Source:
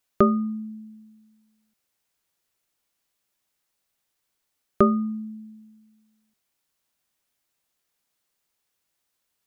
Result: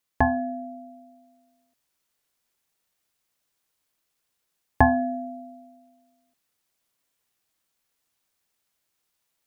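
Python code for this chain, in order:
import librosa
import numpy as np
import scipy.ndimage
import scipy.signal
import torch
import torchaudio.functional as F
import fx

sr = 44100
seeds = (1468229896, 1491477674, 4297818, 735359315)

y = x * np.sin(2.0 * np.pi * 470.0 * np.arange(len(x)) / sr)
y = fx.rider(y, sr, range_db=10, speed_s=2.0)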